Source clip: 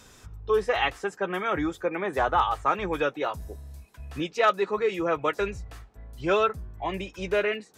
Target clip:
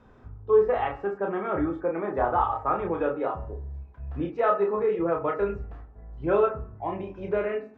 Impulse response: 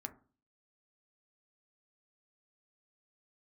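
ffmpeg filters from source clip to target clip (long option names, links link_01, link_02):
-filter_complex "[0:a]lowpass=1100,bandreject=frequency=93.13:width_type=h:width=4,bandreject=frequency=186.26:width_type=h:width=4,bandreject=frequency=279.39:width_type=h:width=4,bandreject=frequency=372.52:width_type=h:width=4,bandreject=frequency=465.65:width_type=h:width=4,bandreject=frequency=558.78:width_type=h:width=4,bandreject=frequency=651.91:width_type=h:width=4,bandreject=frequency=745.04:width_type=h:width=4,bandreject=frequency=838.17:width_type=h:width=4,bandreject=frequency=931.3:width_type=h:width=4,bandreject=frequency=1024.43:width_type=h:width=4,bandreject=frequency=1117.56:width_type=h:width=4,bandreject=frequency=1210.69:width_type=h:width=4,bandreject=frequency=1303.82:width_type=h:width=4,bandreject=frequency=1396.95:width_type=h:width=4,bandreject=frequency=1490.08:width_type=h:width=4,bandreject=frequency=1583.21:width_type=h:width=4,bandreject=frequency=1676.34:width_type=h:width=4,bandreject=frequency=1769.47:width_type=h:width=4,bandreject=frequency=1862.6:width_type=h:width=4,bandreject=frequency=1955.73:width_type=h:width=4,bandreject=frequency=2048.86:width_type=h:width=4,bandreject=frequency=2141.99:width_type=h:width=4,bandreject=frequency=2235.12:width_type=h:width=4,bandreject=frequency=2328.25:width_type=h:width=4,bandreject=frequency=2421.38:width_type=h:width=4,bandreject=frequency=2514.51:width_type=h:width=4,bandreject=frequency=2607.64:width_type=h:width=4,bandreject=frequency=2700.77:width_type=h:width=4,bandreject=frequency=2793.9:width_type=h:width=4,bandreject=frequency=2887.03:width_type=h:width=4,bandreject=frequency=2980.16:width_type=h:width=4,asplit=2[link_01][link_02];[1:a]atrim=start_sample=2205,adelay=30[link_03];[link_02][link_03]afir=irnorm=-1:irlink=0,volume=0dB[link_04];[link_01][link_04]amix=inputs=2:normalize=0"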